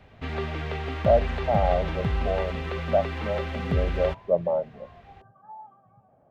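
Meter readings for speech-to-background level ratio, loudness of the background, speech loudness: 2.5 dB, -30.0 LUFS, -27.5 LUFS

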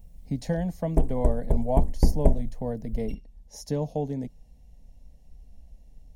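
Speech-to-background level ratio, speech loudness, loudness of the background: -3.0 dB, -31.5 LUFS, -28.5 LUFS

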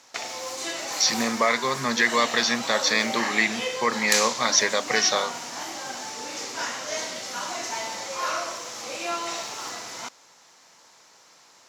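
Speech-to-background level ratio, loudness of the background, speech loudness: 7.0 dB, -30.0 LUFS, -23.0 LUFS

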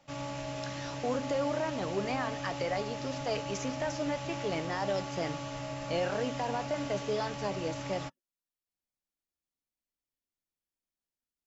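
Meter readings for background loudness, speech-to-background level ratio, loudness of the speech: -39.0 LUFS, 3.5 dB, -35.5 LUFS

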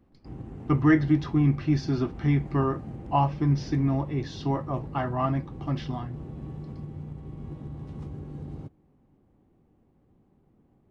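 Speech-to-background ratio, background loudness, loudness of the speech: 13.5 dB, -40.0 LUFS, -26.5 LUFS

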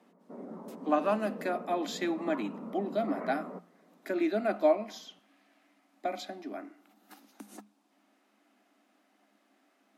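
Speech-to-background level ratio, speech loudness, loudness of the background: 11.5 dB, -32.5 LUFS, -44.0 LUFS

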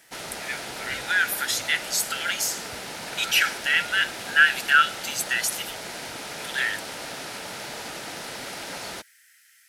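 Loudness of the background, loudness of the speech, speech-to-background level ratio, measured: -34.5 LUFS, -23.5 LUFS, 11.0 dB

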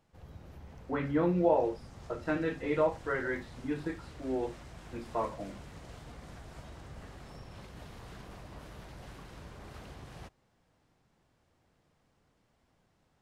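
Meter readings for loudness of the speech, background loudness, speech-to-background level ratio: -33.0 LUFS, -50.0 LUFS, 17.0 dB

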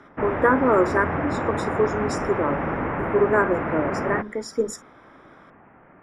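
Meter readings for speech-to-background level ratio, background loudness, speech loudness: 3.0 dB, -27.0 LUFS, -24.0 LUFS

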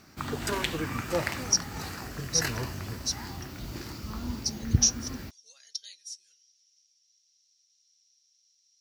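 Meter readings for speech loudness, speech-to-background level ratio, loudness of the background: -30.0 LUFS, 4.0 dB, -34.0 LUFS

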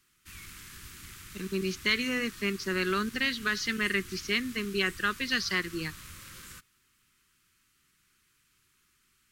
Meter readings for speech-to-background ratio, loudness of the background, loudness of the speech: 15.5 dB, -45.5 LUFS, -30.0 LUFS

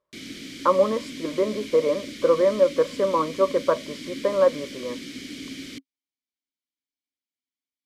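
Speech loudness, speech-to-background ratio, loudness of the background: -23.0 LUFS, 14.0 dB, -37.0 LUFS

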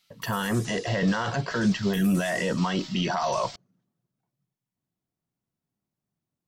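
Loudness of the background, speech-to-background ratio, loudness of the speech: -41.0 LUFS, 14.5 dB, -26.5 LUFS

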